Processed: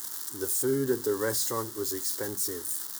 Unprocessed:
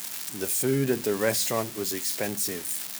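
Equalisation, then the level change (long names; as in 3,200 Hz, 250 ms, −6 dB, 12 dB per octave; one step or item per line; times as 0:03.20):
low-shelf EQ 74 Hz +11.5 dB
phaser with its sweep stopped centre 660 Hz, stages 6
−1.0 dB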